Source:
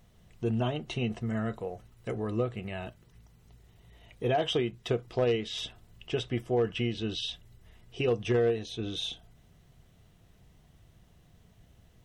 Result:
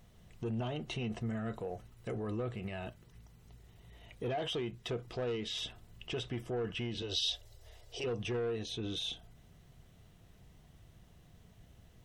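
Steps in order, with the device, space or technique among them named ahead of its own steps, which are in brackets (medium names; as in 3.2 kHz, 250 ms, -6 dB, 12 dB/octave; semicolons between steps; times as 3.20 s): soft clipper into limiter (saturation -23 dBFS, distortion -16 dB; peak limiter -30.5 dBFS, peak gain reduction 7 dB); 7.02–8.04 s: FFT filter 100 Hz 0 dB, 170 Hz -21 dB, 560 Hz +9 dB, 1.1 kHz -1 dB, 2.6 kHz 0 dB, 4.8 kHz +10 dB, 10 kHz +4 dB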